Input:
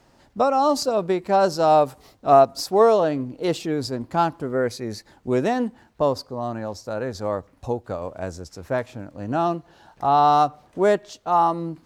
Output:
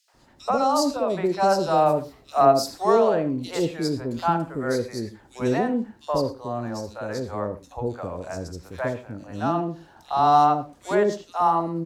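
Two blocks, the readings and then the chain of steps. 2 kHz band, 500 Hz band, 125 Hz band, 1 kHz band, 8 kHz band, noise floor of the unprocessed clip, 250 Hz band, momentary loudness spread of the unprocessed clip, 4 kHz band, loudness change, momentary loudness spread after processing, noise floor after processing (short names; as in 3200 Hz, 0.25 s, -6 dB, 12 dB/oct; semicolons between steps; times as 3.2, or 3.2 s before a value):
-0.5 dB, -2.5 dB, 0.0 dB, -1.5 dB, 0.0 dB, -58 dBFS, 0.0 dB, 15 LU, -1.0 dB, -1.5 dB, 14 LU, -55 dBFS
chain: three bands offset in time highs, mids, lows 80/140 ms, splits 610/3100 Hz; non-linear reverb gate 0.14 s flat, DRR 11.5 dB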